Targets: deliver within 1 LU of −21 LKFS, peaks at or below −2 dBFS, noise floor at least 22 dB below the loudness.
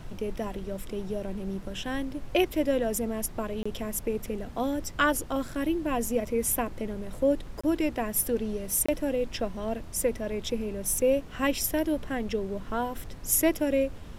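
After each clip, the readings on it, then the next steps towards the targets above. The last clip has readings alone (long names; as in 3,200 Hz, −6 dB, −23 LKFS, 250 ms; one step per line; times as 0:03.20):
number of dropouts 3; longest dropout 25 ms; background noise floor −42 dBFS; target noise floor −51 dBFS; integrated loudness −29.0 LKFS; sample peak −9.5 dBFS; target loudness −21.0 LKFS
→ repair the gap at 0:03.63/0:07.61/0:08.86, 25 ms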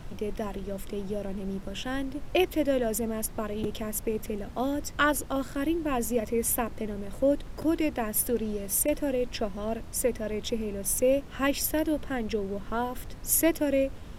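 number of dropouts 0; background noise floor −42 dBFS; target noise floor −51 dBFS
→ noise reduction from a noise print 9 dB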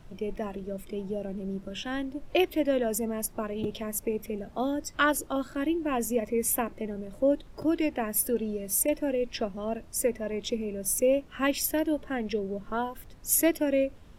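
background noise floor −49 dBFS; target noise floor −52 dBFS
→ noise reduction from a noise print 6 dB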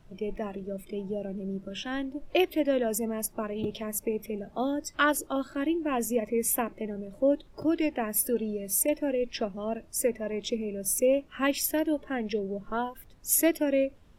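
background noise floor −54 dBFS; integrated loudness −29.5 LKFS; sample peak −9.5 dBFS; target loudness −21.0 LKFS
→ level +8.5 dB
brickwall limiter −2 dBFS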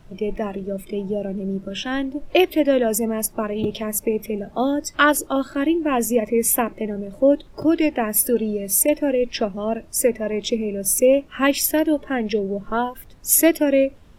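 integrated loudness −21.0 LKFS; sample peak −2.0 dBFS; background noise floor −46 dBFS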